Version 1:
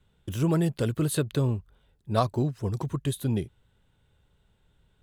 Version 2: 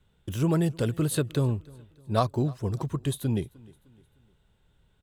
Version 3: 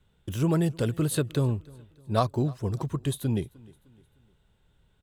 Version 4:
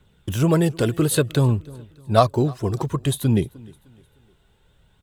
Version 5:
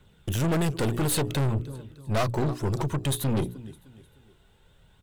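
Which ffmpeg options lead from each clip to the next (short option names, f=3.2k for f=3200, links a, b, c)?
-af "aecho=1:1:305|610|915:0.0631|0.0271|0.0117"
-af anull
-af "lowshelf=f=92:g=-6,aphaser=in_gain=1:out_gain=1:delay=3:decay=0.31:speed=0.57:type=triangular,volume=8dB"
-af "bandreject=f=60:t=h:w=6,bandreject=f=120:t=h:w=6,bandreject=f=180:t=h:w=6,bandreject=f=240:t=h:w=6,bandreject=f=300:t=h:w=6,bandreject=f=360:t=h:w=6,bandreject=f=420:t=h:w=6,aeval=exprs='(tanh(17.8*val(0)+0.45)-tanh(0.45))/17.8':c=same,volume=2.5dB"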